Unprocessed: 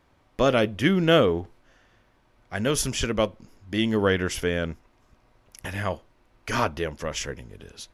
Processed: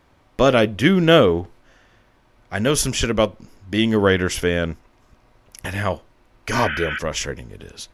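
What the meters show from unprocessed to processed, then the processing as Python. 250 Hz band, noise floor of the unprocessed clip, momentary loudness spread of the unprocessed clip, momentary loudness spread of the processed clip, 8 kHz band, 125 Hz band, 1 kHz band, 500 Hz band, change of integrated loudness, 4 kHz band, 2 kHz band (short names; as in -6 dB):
+5.5 dB, -63 dBFS, 18 LU, 18 LU, +5.5 dB, +5.5 dB, +5.5 dB, +5.5 dB, +5.5 dB, +5.5 dB, +6.0 dB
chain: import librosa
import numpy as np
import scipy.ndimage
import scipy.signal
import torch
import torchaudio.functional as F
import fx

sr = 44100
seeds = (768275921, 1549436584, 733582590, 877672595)

y = fx.spec_repair(x, sr, seeds[0], start_s=6.55, length_s=0.41, low_hz=1200.0, high_hz=3500.0, source='before')
y = y * librosa.db_to_amplitude(5.5)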